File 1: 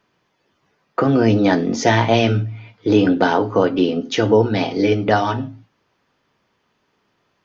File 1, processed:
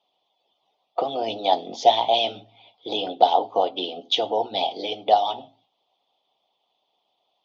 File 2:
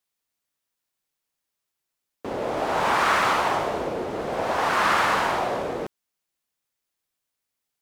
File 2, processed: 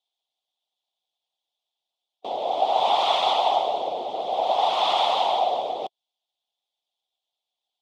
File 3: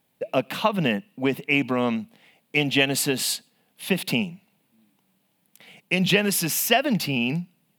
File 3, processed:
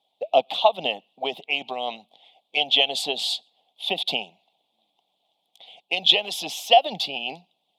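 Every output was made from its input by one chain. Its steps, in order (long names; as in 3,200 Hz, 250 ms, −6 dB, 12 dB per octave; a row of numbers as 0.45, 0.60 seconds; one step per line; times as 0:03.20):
pair of resonant band-passes 1,600 Hz, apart 2.2 octaves
harmonic and percussive parts rebalanced harmonic −10 dB
loudness normalisation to −23 LKFS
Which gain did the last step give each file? +10.0, +15.5, +14.0 decibels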